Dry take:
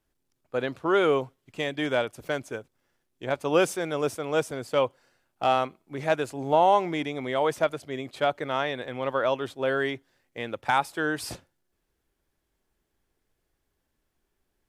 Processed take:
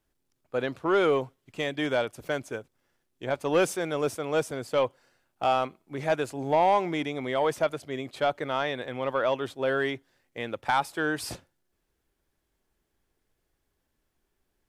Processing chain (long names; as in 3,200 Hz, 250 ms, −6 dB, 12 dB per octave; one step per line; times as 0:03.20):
soft clipping −13.5 dBFS, distortion −18 dB